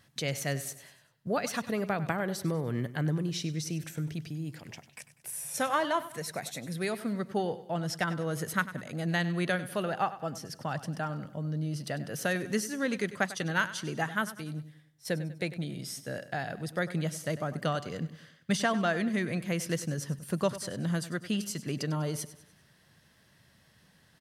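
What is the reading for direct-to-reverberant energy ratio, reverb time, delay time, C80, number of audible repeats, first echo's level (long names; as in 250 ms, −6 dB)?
no reverb audible, no reverb audible, 98 ms, no reverb audible, 3, −15.0 dB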